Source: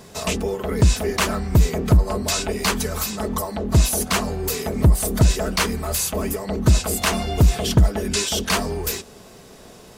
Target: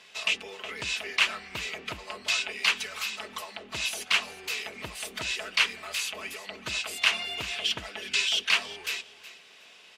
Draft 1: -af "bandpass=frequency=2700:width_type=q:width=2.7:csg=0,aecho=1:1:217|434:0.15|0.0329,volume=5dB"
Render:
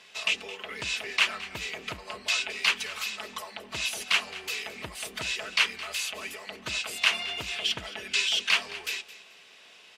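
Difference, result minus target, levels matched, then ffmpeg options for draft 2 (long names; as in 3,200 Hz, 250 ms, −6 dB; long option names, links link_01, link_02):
echo 152 ms early
-af "bandpass=frequency=2700:width_type=q:width=2.7:csg=0,aecho=1:1:369|738:0.15|0.0329,volume=5dB"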